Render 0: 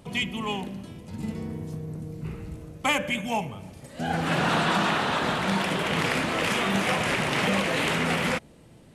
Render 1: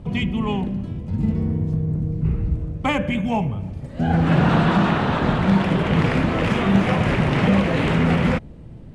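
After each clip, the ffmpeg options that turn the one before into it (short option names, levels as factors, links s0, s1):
-af "aemphasis=mode=reproduction:type=riaa,volume=1.33"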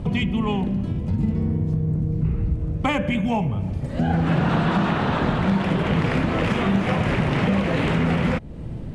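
-af "acompressor=threshold=0.0282:ratio=2.5,volume=2.51"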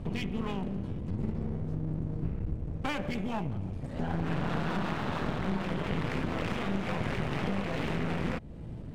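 -af "aeval=exprs='clip(val(0),-1,0.0251)':c=same,volume=0.398"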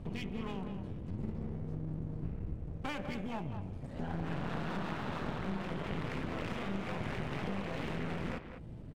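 -filter_complex "[0:a]asplit=2[s0][s1];[s1]adelay=200,highpass=300,lowpass=3400,asoftclip=type=hard:threshold=0.0447,volume=0.398[s2];[s0][s2]amix=inputs=2:normalize=0,volume=0.501"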